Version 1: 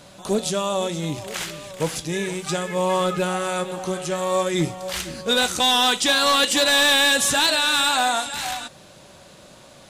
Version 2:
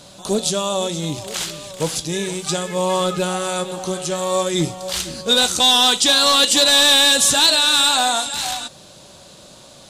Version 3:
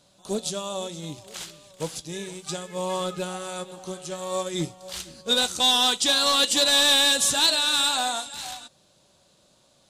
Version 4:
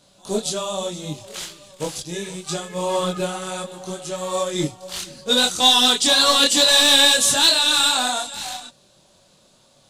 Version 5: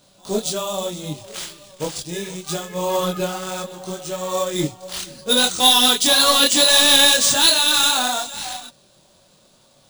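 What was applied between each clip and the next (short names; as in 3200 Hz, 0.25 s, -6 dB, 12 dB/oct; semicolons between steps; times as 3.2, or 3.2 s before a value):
ten-band EQ 2000 Hz -5 dB, 4000 Hz +5 dB, 8000 Hz +4 dB; gain +2 dB
upward expander 1.5:1, over -36 dBFS; gain -5.5 dB
chorus voices 6, 0.67 Hz, delay 24 ms, depth 4.7 ms; gain +8 dB
careless resampling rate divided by 3×, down none, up hold; gain +1 dB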